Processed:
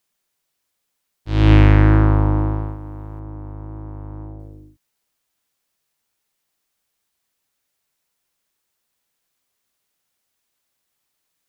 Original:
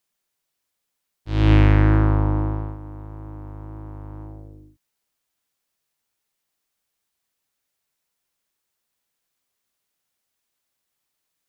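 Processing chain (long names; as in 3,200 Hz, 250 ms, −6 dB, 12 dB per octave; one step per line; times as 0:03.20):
0:03.19–0:04.40: high-shelf EQ 2,200 Hz −10.5 dB
level +3.5 dB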